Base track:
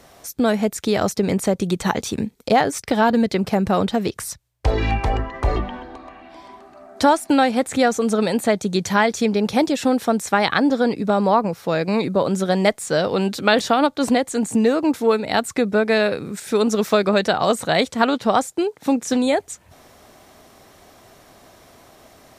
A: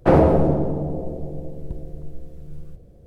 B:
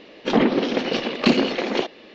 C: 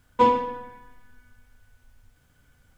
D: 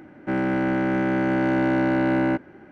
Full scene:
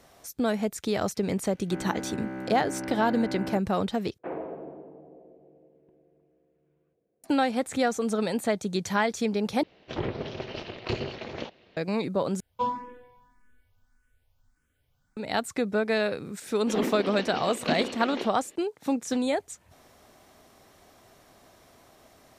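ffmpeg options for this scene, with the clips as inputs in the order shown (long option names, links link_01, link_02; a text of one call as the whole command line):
ffmpeg -i bed.wav -i cue0.wav -i cue1.wav -i cue2.wav -i cue3.wav -filter_complex "[2:a]asplit=2[link_01][link_02];[0:a]volume=-8dB[link_03];[4:a]acrossover=split=3300[link_04][link_05];[link_04]adelay=560[link_06];[link_06][link_05]amix=inputs=2:normalize=0[link_07];[1:a]highpass=460,equalizer=frequency=570:width_type=q:width=4:gain=-8,equalizer=frequency=860:width_type=q:width=4:gain=-7,equalizer=frequency=1300:width_type=q:width=4:gain=-8,equalizer=frequency=1900:width_type=q:width=4:gain=-4,lowpass=frequency=2400:width=0.5412,lowpass=frequency=2400:width=1.3066[link_08];[link_01]aeval=exprs='val(0)*sin(2*PI*130*n/s)':channel_layout=same[link_09];[3:a]asplit=2[link_10][link_11];[link_11]afreqshift=1.7[link_12];[link_10][link_12]amix=inputs=2:normalize=1[link_13];[link_03]asplit=4[link_14][link_15][link_16][link_17];[link_14]atrim=end=4.184[link_18];[link_08]atrim=end=3.06,asetpts=PTS-STARTPTS,volume=-13dB[link_19];[link_15]atrim=start=7.236:end=9.634[link_20];[link_09]atrim=end=2.14,asetpts=PTS-STARTPTS,volume=-10.5dB[link_21];[link_16]atrim=start=11.766:end=12.404[link_22];[link_13]atrim=end=2.77,asetpts=PTS-STARTPTS,volume=-8.5dB[link_23];[link_17]atrim=start=15.166[link_24];[link_07]atrim=end=2.71,asetpts=PTS-STARTPTS,volume=-13.5dB,afade=type=in:duration=0.004:curve=hsin,afade=type=out:start_time=2.706:duration=0.004:curve=hsin,adelay=870[link_25];[link_02]atrim=end=2.14,asetpts=PTS-STARTPTS,volume=-12dB,afade=type=in:duration=0.004:curve=hsin,afade=type=out:start_time=2.136:duration=0.004:curve=hsin,adelay=16420[link_26];[link_18][link_19]acrossfade=duration=0.004:curve1=hsin:curve2=hsin[link_27];[link_27][link_20]acrossfade=duration=0.004:curve1=hsin:curve2=hsin[link_28];[link_28][link_21]acrossfade=duration=0.004:curve1=hsin:curve2=hsin[link_29];[link_29][link_22]acrossfade=duration=0.004:curve1=hsin:curve2=hsin[link_30];[link_30][link_23]acrossfade=duration=0.004:curve1=hsin:curve2=hsin[link_31];[link_31][link_24]acrossfade=duration=0.004:curve1=hsin:curve2=hsin[link_32];[link_32][link_25][link_26]amix=inputs=3:normalize=0" out.wav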